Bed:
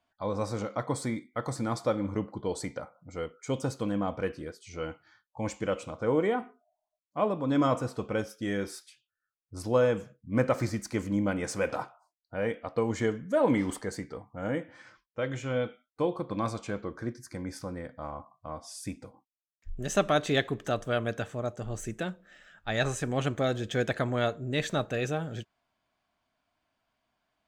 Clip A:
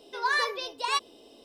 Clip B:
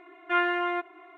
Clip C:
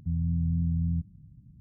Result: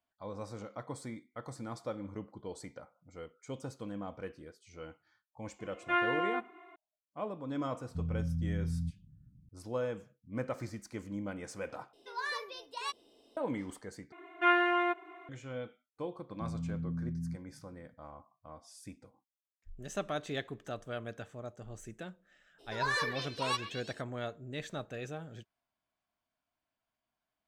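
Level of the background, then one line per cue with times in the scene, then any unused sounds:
bed -11 dB
5.59 s: add B -5 dB
7.89 s: add C -7 dB
11.93 s: replace with A -11 dB
14.12 s: replace with B -1 dB + band-stop 1.9 kHz, Q 16
16.34 s: add C -2.5 dB + high-pass 200 Hz
22.58 s: add A -6.5 dB, fades 0.02 s + repeats whose band climbs or falls 120 ms, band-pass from 1.9 kHz, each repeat 0.7 oct, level -5.5 dB

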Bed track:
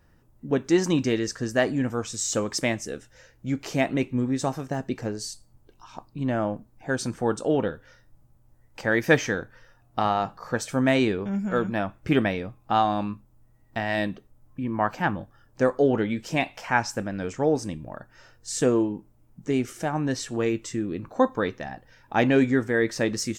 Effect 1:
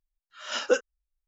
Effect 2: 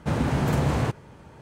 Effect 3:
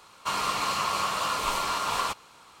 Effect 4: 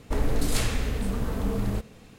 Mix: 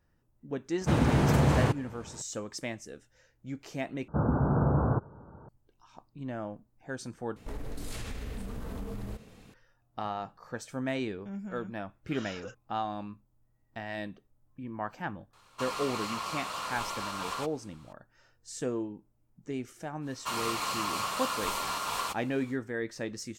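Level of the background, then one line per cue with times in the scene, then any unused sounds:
bed track -11.5 dB
0.81 s: add 2 -0.5 dB
4.08 s: replace with 2 -2.5 dB + steep low-pass 1.5 kHz 96 dB/octave
7.36 s: replace with 4 -4 dB + compression 5:1, threshold -30 dBFS
11.74 s: add 1 -5.5 dB + compression 4:1, threshold -37 dBFS
15.33 s: add 3 -8.5 dB
20.00 s: add 3 -5.5 dB, fades 0.10 s + treble shelf 9.7 kHz +8.5 dB

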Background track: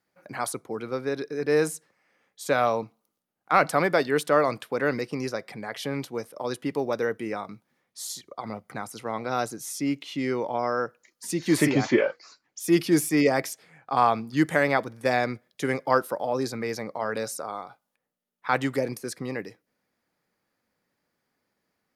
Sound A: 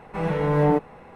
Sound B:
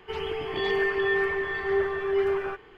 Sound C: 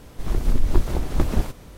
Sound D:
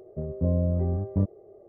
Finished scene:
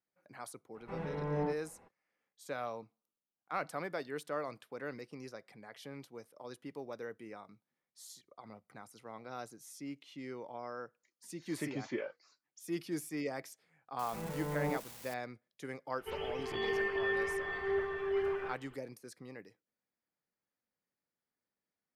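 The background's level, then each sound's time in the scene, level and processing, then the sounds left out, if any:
background track -17 dB
0.74 s: add A -15.5 dB, fades 0.02 s + distance through air 59 m
13.99 s: add A -16.5 dB + zero-crossing glitches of -21 dBFS
15.98 s: add B -8.5 dB
not used: C, D

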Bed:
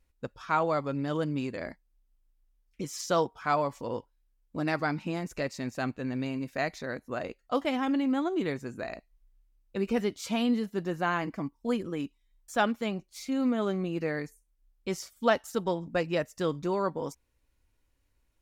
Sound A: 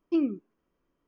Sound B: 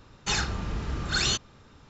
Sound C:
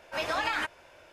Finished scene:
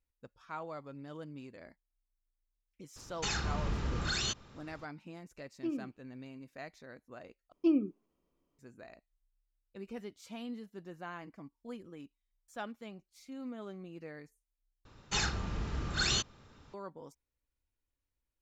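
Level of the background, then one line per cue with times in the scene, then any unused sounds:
bed -15.5 dB
2.96 s: add B -2.5 dB + peak limiter -22 dBFS
5.51 s: add A -11 dB + feedback echo behind a high-pass 68 ms, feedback 39%, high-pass 1.9 kHz, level -8 dB
7.52 s: replace with A -2 dB + peaking EQ 1.6 kHz -11 dB 0.56 oct
14.85 s: replace with B -5 dB
not used: C

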